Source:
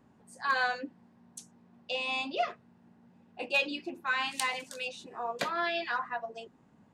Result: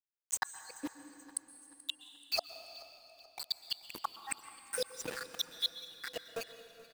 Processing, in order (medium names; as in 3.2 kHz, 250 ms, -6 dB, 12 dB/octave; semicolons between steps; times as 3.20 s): random holes in the spectrogram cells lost 81%; RIAA curve recording; comb 6.4 ms, depth 51%; in parallel at -0.5 dB: peak limiter -29 dBFS, peak gain reduction 9 dB; on the sum: vibrato 0.34 Hz 14 cents; small samples zeroed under -43 dBFS; inverted gate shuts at -26 dBFS, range -41 dB; feedback delay 432 ms, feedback 47%, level -20 dB; on a send at -11 dB: reverberation RT60 3.6 s, pre-delay 113 ms; on the sum: trim +7 dB